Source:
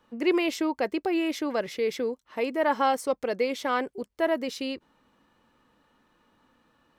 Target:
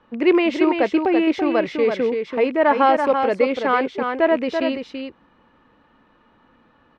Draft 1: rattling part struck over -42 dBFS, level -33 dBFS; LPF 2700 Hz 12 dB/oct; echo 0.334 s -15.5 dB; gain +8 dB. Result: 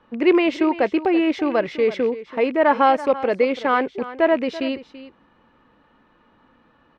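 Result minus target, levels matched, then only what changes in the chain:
echo-to-direct -9.5 dB
change: echo 0.334 s -6 dB

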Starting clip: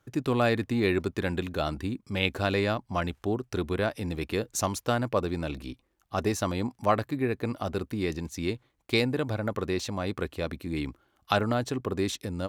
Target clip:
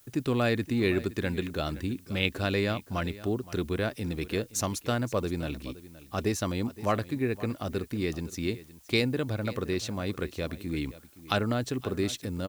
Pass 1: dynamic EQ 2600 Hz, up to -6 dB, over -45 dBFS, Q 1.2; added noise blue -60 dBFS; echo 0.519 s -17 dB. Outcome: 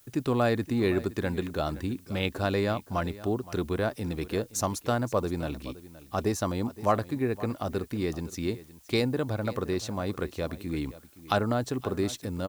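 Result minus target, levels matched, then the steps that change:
1000 Hz band +3.0 dB
change: dynamic EQ 870 Hz, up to -6 dB, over -45 dBFS, Q 1.2

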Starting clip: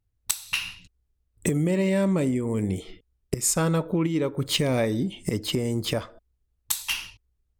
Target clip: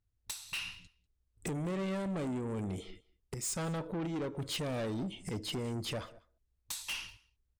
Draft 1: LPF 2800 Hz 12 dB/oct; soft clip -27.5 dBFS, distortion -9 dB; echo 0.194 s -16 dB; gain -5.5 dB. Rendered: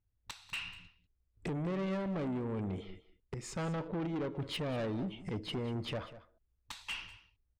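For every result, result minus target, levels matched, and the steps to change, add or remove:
8000 Hz band -11.0 dB; echo-to-direct +8.5 dB
change: LPF 10000 Hz 12 dB/oct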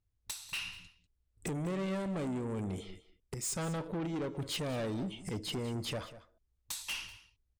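echo-to-direct +8.5 dB
change: echo 0.194 s -24.5 dB

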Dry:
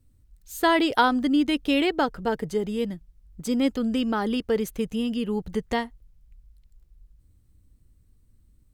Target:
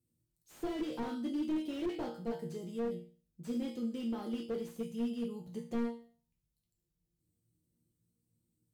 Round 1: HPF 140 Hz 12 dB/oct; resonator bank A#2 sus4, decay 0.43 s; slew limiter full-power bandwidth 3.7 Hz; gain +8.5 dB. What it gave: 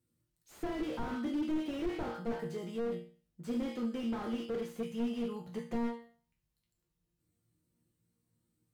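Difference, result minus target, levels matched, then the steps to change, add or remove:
2000 Hz band +4.0 dB
add after HPF: bell 1500 Hz -15 dB 2 oct

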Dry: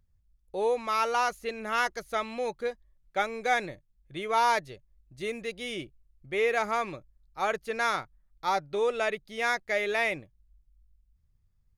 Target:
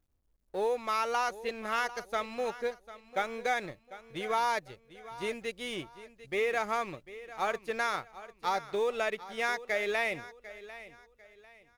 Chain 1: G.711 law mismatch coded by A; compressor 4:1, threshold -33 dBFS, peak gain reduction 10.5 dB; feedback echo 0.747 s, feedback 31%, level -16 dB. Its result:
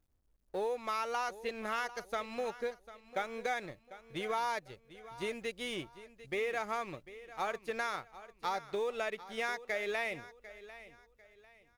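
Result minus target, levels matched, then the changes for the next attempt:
compressor: peak gain reduction +5 dB
change: compressor 4:1, threshold -26 dBFS, peak gain reduction 5 dB

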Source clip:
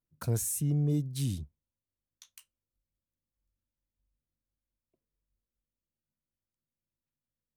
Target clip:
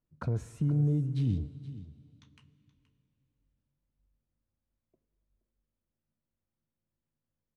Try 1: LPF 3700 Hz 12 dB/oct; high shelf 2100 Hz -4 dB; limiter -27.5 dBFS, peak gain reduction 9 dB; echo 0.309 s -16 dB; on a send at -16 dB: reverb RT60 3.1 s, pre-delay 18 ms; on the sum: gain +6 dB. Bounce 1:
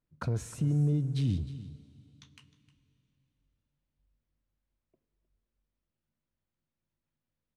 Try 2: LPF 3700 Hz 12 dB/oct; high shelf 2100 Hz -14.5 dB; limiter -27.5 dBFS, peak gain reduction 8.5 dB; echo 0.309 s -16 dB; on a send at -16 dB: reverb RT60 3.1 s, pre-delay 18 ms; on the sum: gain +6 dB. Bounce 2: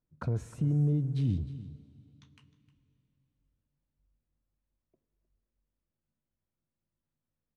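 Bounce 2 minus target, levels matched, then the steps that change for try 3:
echo 0.165 s early
change: echo 0.474 s -16 dB

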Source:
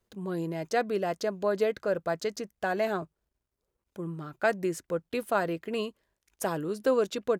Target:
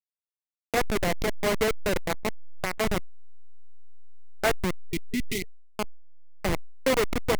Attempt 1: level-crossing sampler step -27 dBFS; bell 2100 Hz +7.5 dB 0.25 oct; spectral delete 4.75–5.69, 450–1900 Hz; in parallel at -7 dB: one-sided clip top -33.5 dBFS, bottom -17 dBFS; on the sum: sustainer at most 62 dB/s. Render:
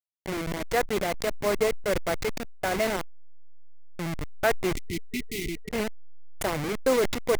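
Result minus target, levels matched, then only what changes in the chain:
level-crossing sampler: distortion -10 dB
change: level-crossing sampler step -20.5 dBFS

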